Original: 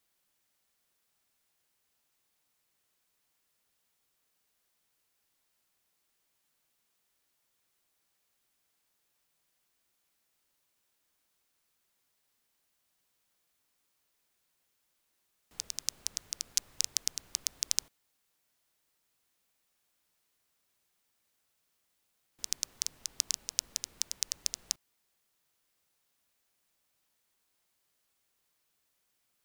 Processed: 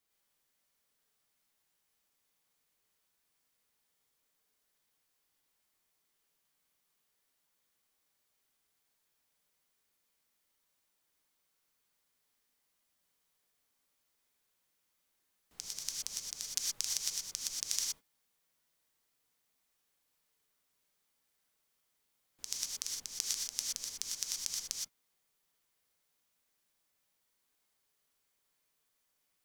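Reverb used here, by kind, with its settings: gated-style reverb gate 140 ms rising, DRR -2 dB; trim -6 dB

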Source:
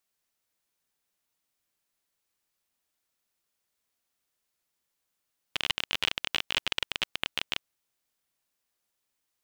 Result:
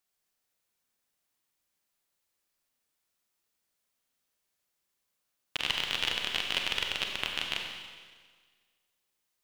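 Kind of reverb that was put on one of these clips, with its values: Schroeder reverb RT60 1.6 s, combs from 31 ms, DRR 1.5 dB; trim -2 dB

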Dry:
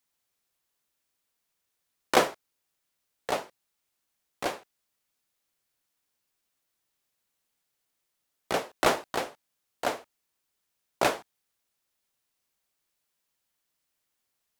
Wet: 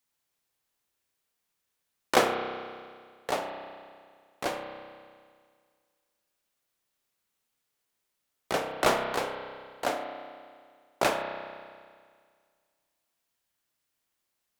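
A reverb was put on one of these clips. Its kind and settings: spring tank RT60 1.9 s, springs 31 ms, chirp 30 ms, DRR 4 dB; trim -1 dB

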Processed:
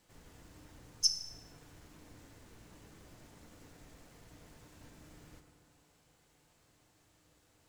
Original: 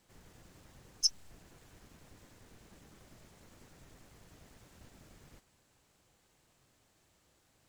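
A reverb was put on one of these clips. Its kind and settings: FDN reverb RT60 2 s, low-frequency decay 1×, high-frequency decay 0.4×, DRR 4 dB

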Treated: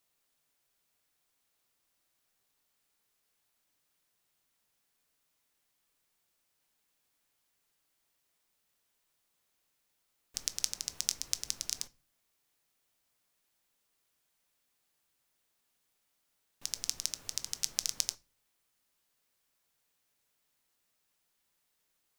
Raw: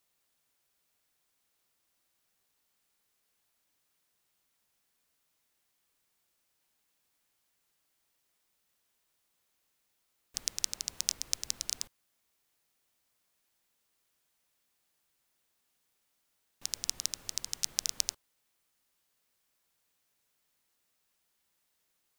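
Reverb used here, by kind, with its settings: simulated room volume 190 m³, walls furnished, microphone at 0.32 m; trim -1 dB

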